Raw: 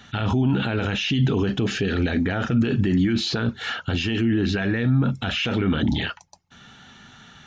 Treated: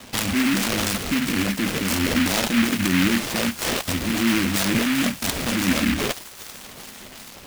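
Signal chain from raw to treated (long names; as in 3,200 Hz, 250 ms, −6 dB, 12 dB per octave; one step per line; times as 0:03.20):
parametric band 2,000 Hz +9.5 dB 0.97 octaves
notch filter 1,700 Hz, Q 13
in parallel at −3 dB: brickwall limiter −19.5 dBFS, peak gain reduction 10.5 dB
on the sum: steady tone 1,100 Hz −41 dBFS
phaser with its sweep stopped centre 630 Hz, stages 8
sample-and-hold swept by an LFO 17×, swing 60% 3 Hz
on a send: delay with a high-pass on its return 390 ms, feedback 63%, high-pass 2,100 Hz, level −7 dB
on the sum: short delay modulated by noise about 2,000 Hz, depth 0.27 ms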